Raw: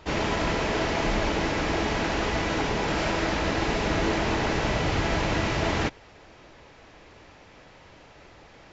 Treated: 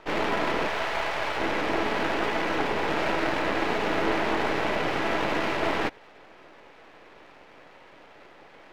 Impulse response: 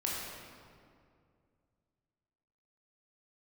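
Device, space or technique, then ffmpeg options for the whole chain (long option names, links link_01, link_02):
crystal radio: -filter_complex "[0:a]asettb=1/sr,asplit=3[link_01][link_02][link_03];[link_01]atrim=end=0.684[link_04];[link_02]atrim=start=0.68:end=1.4,asetpts=PTS-STARTPTS,afade=type=in:duration=0.004:curve=qsin,afade=type=out:start_time=0.716:duration=0.004:curve=qsin,highpass=640[link_05];[link_03]atrim=start=1.396[link_06];[link_04][link_05]acrossfade=duration=0.004:curve1=hsin:curve2=qsin[link_07];[link_07][link_06]acrossfade=duration=0.004:curve1=qsin:curve2=hsin,highpass=280,lowpass=2800,aeval=exprs='if(lt(val(0),0),0.251*val(0),val(0))':channel_layout=same,volume=5dB"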